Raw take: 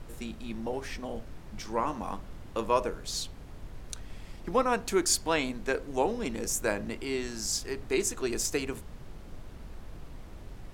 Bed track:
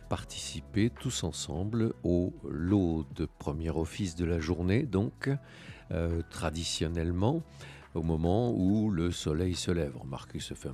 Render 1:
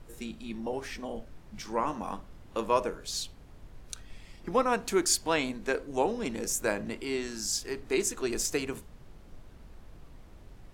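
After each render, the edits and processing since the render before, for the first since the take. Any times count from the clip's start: noise print and reduce 6 dB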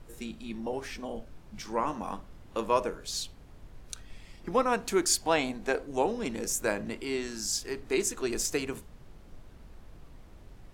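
0.91–1.58 s: band-stop 1.9 kHz; 5.21–5.86 s: peaking EQ 740 Hz +9.5 dB 0.32 oct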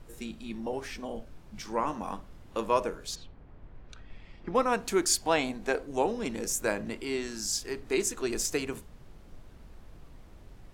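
3.14–4.54 s: low-pass 1.6 kHz -> 3.6 kHz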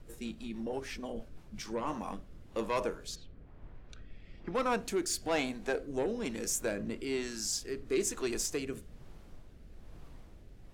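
saturation -21.5 dBFS, distortion -13 dB; rotary cabinet horn 6.3 Hz, later 1.1 Hz, at 1.17 s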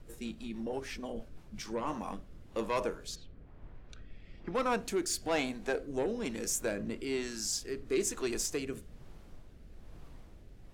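no audible change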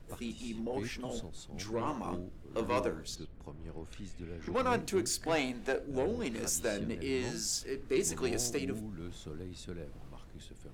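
add bed track -14 dB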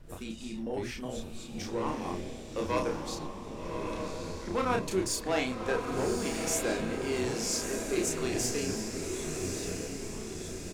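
doubling 32 ms -3.5 dB; echo that smears into a reverb 1180 ms, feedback 52%, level -4.5 dB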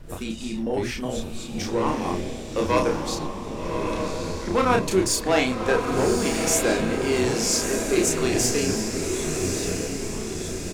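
trim +9 dB

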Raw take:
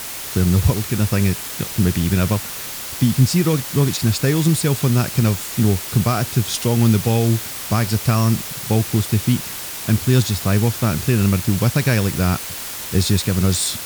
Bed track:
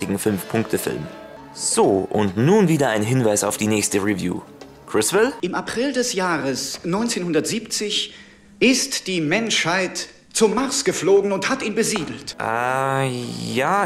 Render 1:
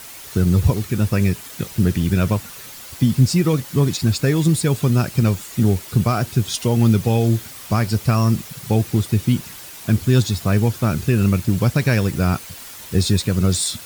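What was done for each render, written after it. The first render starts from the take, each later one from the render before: noise reduction 9 dB, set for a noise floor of -30 dBFS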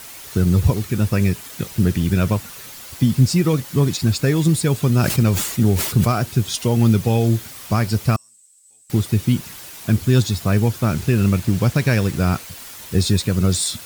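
4.92–6.12 s: decay stretcher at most 62 dB/s; 8.16–8.90 s: band-pass filter 8 kHz, Q 17; 10.88–12.43 s: send-on-delta sampling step -33.5 dBFS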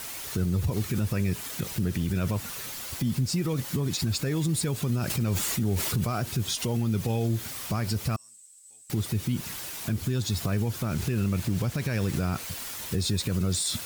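compression, threshold -18 dBFS, peak gain reduction 9 dB; peak limiter -19 dBFS, peak gain reduction 9.5 dB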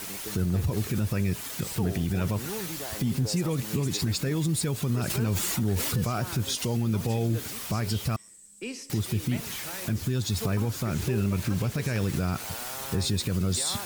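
add bed track -21.5 dB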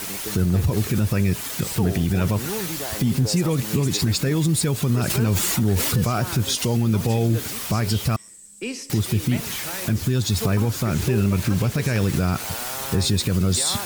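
trim +6.5 dB

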